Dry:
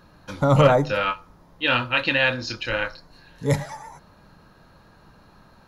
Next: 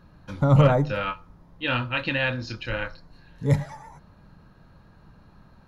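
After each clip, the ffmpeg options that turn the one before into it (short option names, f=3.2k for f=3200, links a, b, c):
-af "bass=f=250:g=8,treble=f=4k:g=-5,volume=-5dB"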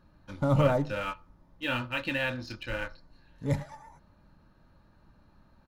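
-filter_complex "[0:a]aecho=1:1:3.4:0.32,asplit=2[a][b];[b]acrusher=bits=4:mix=0:aa=0.5,volume=-10.5dB[c];[a][c]amix=inputs=2:normalize=0,volume=-8dB"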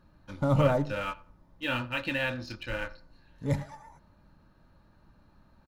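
-filter_complex "[0:a]asplit=2[a][b];[b]adelay=90,lowpass=f=1.8k:p=1,volume=-20dB,asplit=2[c][d];[d]adelay=90,lowpass=f=1.8k:p=1,volume=0.34,asplit=2[e][f];[f]adelay=90,lowpass=f=1.8k:p=1,volume=0.34[g];[a][c][e][g]amix=inputs=4:normalize=0"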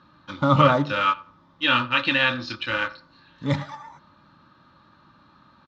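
-af "highpass=160,equalizer=f=200:t=q:w=4:g=-4,equalizer=f=440:t=q:w=4:g=-9,equalizer=f=690:t=q:w=4:g=-7,equalizer=f=1.2k:t=q:w=4:g=9,equalizer=f=3.5k:t=q:w=4:g=9,lowpass=f=5.7k:w=0.5412,lowpass=f=5.7k:w=1.3066,volume=9dB"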